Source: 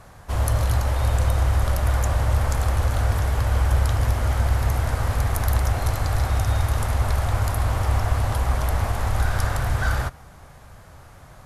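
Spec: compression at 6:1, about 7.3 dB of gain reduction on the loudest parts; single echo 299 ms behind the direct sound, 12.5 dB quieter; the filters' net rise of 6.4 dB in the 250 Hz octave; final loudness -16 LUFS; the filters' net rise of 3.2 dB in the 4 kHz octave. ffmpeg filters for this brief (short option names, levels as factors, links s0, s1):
-af "equalizer=f=250:t=o:g=8.5,equalizer=f=4000:t=o:g=4,acompressor=threshold=0.0708:ratio=6,aecho=1:1:299:0.237,volume=4.22"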